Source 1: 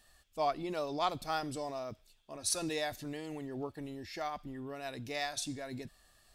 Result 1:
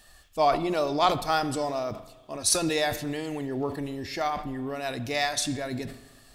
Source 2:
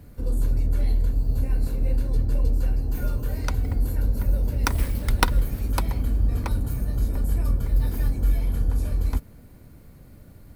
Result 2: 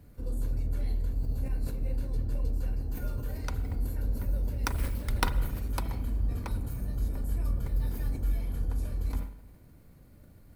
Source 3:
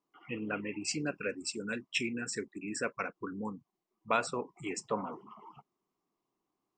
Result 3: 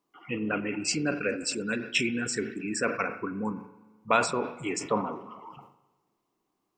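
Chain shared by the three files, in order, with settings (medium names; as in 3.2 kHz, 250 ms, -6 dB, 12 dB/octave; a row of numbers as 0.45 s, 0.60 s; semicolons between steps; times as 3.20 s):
spring tank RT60 1.3 s, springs 37/42 ms, chirp 70 ms, DRR 13 dB; decay stretcher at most 110 dB/s; peak normalisation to -9 dBFS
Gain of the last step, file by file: +9.5 dB, -8.0 dB, +6.0 dB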